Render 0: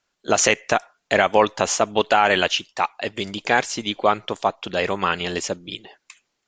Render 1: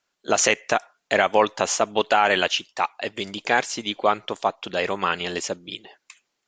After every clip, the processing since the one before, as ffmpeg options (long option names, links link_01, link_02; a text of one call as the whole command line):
ffmpeg -i in.wav -af "lowshelf=frequency=120:gain=-9.5,volume=-1.5dB" out.wav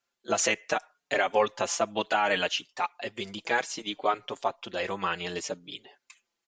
ffmpeg -i in.wav -filter_complex "[0:a]asplit=2[link_01][link_02];[link_02]adelay=5.3,afreqshift=-0.66[link_03];[link_01][link_03]amix=inputs=2:normalize=1,volume=-3.5dB" out.wav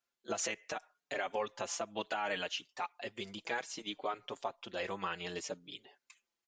ffmpeg -i in.wav -af "alimiter=limit=-18dB:level=0:latency=1:release=176,volume=-7dB" out.wav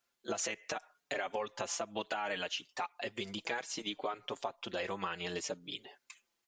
ffmpeg -i in.wav -af "acompressor=threshold=-43dB:ratio=2.5,volume=6.5dB" out.wav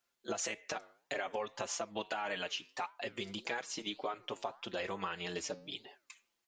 ffmpeg -i in.wav -af "flanger=delay=5.4:depth=4.7:regen=-89:speed=1.7:shape=sinusoidal,volume=3.5dB" out.wav